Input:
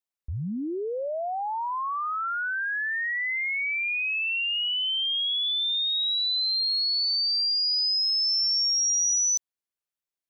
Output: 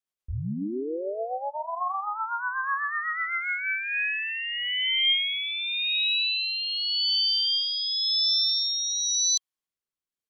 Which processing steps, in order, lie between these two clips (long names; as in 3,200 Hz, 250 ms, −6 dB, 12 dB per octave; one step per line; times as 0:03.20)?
rotating-speaker cabinet horn 8 Hz, later 0.9 Hz, at 0:03.20
pitch-shifted copies added −7 semitones −4 dB, −5 semitones −16 dB
hollow resonant body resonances 1,100/3,200 Hz, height 7 dB